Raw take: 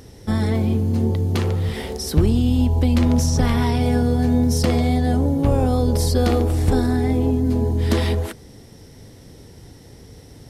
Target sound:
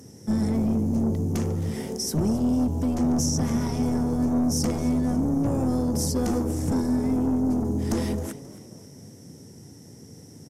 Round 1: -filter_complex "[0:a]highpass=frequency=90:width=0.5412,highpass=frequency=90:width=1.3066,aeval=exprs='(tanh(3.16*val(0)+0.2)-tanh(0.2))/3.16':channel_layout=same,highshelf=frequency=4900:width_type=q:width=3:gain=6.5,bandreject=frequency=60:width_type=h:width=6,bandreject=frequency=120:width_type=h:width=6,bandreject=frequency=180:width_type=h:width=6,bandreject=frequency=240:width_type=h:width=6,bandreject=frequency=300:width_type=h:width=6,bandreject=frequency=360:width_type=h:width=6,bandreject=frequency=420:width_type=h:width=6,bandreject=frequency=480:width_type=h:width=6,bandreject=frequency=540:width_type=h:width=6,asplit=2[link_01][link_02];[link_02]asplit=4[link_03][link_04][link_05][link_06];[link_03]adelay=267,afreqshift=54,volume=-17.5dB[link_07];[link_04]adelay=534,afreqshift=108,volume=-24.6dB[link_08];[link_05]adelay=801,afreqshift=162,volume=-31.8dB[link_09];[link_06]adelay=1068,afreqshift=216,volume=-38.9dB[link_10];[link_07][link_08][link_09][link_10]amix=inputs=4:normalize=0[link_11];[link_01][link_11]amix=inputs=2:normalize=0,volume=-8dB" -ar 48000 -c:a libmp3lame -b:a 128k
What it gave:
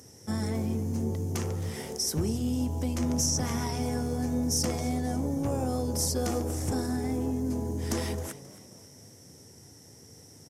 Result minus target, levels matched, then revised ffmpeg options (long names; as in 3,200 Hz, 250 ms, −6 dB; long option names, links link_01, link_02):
250 Hz band −2.5 dB
-filter_complex "[0:a]highpass=frequency=90:width=0.5412,highpass=frequency=90:width=1.3066,equalizer=frequency=200:width_type=o:width=2:gain=11.5,aeval=exprs='(tanh(3.16*val(0)+0.2)-tanh(0.2))/3.16':channel_layout=same,highshelf=frequency=4900:width_type=q:width=3:gain=6.5,bandreject=frequency=60:width_type=h:width=6,bandreject=frequency=120:width_type=h:width=6,bandreject=frequency=180:width_type=h:width=6,bandreject=frequency=240:width_type=h:width=6,bandreject=frequency=300:width_type=h:width=6,bandreject=frequency=360:width_type=h:width=6,bandreject=frequency=420:width_type=h:width=6,bandreject=frequency=480:width_type=h:width=6,bandreject=frequency=540:width_type=h:width=6,asplit=2[link_01][link_02];[link_02]asplit=4[link_03][link_04][link_05][link_06];[link_03]adelay=267,afreqshift=54,volume=-17.5dB[link_07];[link_04]adelay=534,afreqshift=108,volume=-24.6dB[link_08];[link_05]adelay=801,afreqshift=162,volume=-31.8dB[link_09];[link_06]adelay=1068,afreqshift=216,volume=-38.9dB[link_10];[link_07][link_08][link_09][link_10]amix=inputs=4:normalize=0[link_11];[link_01][link_11]amix=inputs=2:normalize=0,volume=-8dB" -ar 48000 -c:a libmp3lame -b:a 128k